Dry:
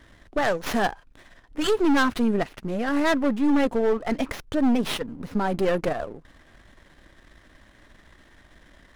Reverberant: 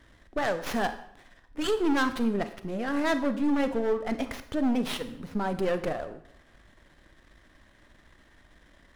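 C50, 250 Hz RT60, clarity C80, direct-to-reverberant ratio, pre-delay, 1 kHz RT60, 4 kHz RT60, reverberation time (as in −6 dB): 12.5 dB, 0.65 s, 15.0 dB, 10.0 dB, 28 ms, 0.70 s, 0.60 s, 0.70 s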